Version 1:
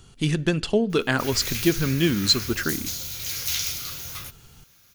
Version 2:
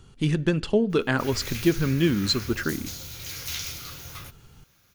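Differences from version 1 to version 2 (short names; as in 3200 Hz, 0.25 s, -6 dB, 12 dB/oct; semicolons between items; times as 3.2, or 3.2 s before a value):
speech: add notch 700 Hz, Q 15; master: add high shelf 2700 Hz -8 dB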